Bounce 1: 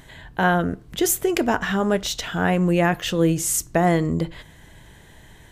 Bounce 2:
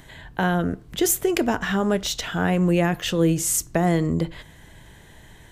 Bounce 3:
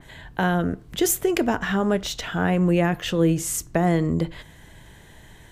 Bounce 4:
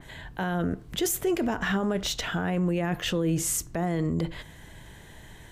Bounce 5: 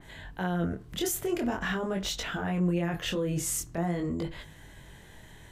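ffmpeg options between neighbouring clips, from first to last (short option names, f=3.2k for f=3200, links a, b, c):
-filter_complex "[0:a]acrossover=split=400|3000[a][b][c];[b]acompressor=threshold=-22dB:ratio=6[d];[a][d][c]amix=inputs=3:normalize=0"
-af "adynamicequalizer=threshold=0.01:dfrequency=3300:dqfactor=0.7:tfrequency=3300:tqfactor=0.7:attack=5:release=100:ratio=0.375:range=2.5:mode=cutabove:tftype=highshelf"
-af "alimiter=limit=-18.5dB:level=0:latency=1:release=29"
-af "flanger=delay=20:depth=6.2:speed=0.45"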